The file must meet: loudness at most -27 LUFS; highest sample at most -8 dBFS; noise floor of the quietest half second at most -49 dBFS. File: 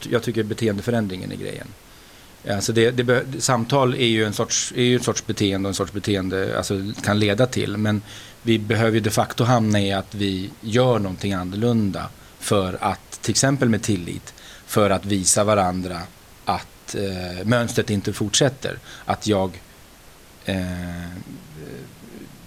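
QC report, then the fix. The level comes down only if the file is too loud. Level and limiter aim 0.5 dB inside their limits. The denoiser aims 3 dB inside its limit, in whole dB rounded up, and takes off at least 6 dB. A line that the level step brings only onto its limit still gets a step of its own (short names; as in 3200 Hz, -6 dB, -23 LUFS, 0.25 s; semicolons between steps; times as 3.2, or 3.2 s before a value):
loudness -21.5 LUFS: fail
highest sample -5.0 dBFS: fail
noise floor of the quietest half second -46 dBFS: fail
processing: gain -6 dB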